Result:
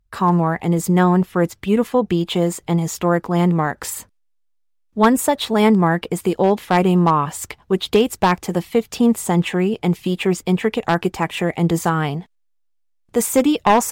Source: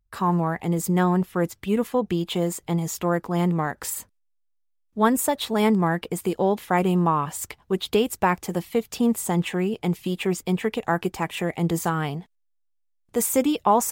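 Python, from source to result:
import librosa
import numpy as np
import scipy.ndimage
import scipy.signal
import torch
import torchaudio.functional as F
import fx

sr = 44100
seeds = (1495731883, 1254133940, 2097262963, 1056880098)

y = np.minimum(x, 2.0 * 10.0 ** (-13.0 / 20.0) - x)
y = fx.high_shelf(y, sr, hz=9200.0, db=-7.5)
y = y * 10.0 ** (6.0 / 20.0)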